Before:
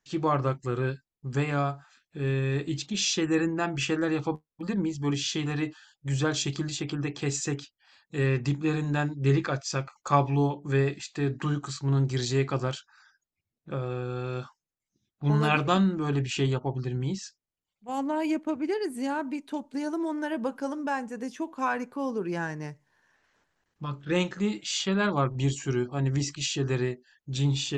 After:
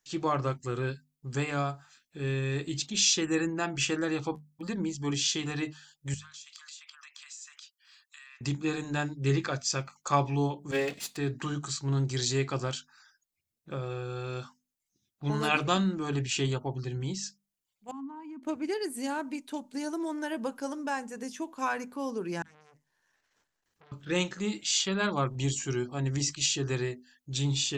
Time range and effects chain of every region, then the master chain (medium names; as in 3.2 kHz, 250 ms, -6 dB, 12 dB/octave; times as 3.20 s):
6.14–8.41 s: elliptic high-pass 1.1 kHz, stop band 80 dB + compression 16:1, threshold -46 dBFS
10.71–11.17 s: comb filter that takes the minimum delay 4.3 ms + high-pass 97 Hz
17.91–18.43 s: two resonant band-passes 510 Hz, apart 2 oct + peaking EQ 780 Hz -4.5 dB 1.4 oct
22.42–23.92 s: compression 20:1, threshold -43 dBFS + transformer saturation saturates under 2.6 kHz
whole clip: treble shelf 3.9 kHz +11 dB; hum notches 50/100/150/200/250 Hz; trim -3.5 dB